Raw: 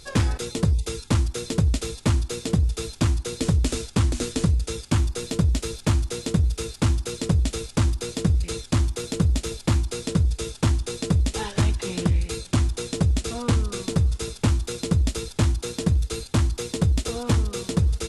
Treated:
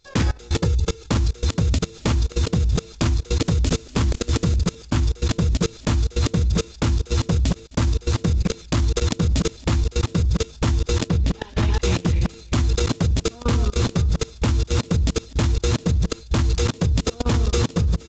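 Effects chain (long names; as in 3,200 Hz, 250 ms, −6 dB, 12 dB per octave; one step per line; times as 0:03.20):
delay that plays each chunk backwards 190 ms, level −7 dB
mains-hum notches 50/100/150/200/250/300 Hz
0:00.52–0:01.06: comb filter 2.3 ms, depth 46%
0:07.54–0:08.15: noise gate −27 dBFS, range −18 dB
automatic gain control gain up to 5 dB
brickwall limiter −14 dBFS, peak gain reduction 9 dB
output level in coarse steps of 23 dB
0:11.08–0:11.74: high-frequency loss of the air 83 metres
downsampling to 16,000 Hz
level +5 dB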